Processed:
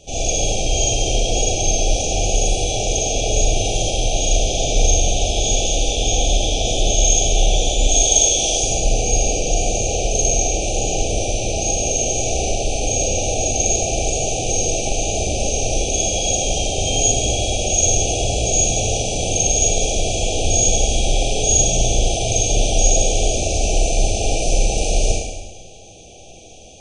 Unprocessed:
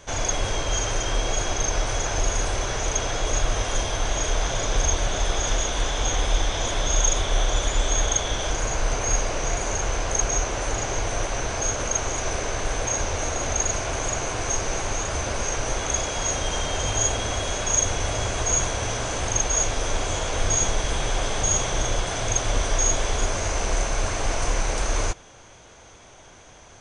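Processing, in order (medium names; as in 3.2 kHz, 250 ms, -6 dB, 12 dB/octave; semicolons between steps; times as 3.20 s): 7.89–8.64 s: tone controls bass -6 dB, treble +7 dB; brick-wall FIR band-stop 830–2300 Hz; reverberation RT60 1.1 s, pre-delay 35 ms, DRR -4.5 dB; trim +1.5 dB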